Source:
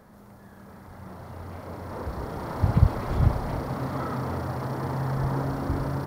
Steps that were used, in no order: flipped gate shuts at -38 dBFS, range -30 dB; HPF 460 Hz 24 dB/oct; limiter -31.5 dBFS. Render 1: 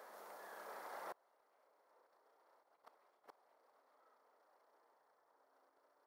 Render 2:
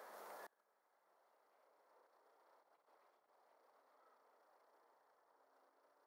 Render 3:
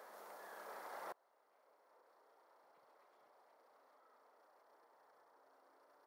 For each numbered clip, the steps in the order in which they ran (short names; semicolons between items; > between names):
limiter > HPF > flipped gate; limiter > flipped gate > HPF; HPF > limiter > flipped gate